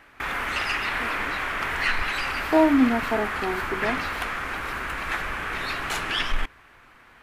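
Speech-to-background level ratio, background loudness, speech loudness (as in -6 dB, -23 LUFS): 3.0 dB, -27.0 LUFS, -24.0 LUFS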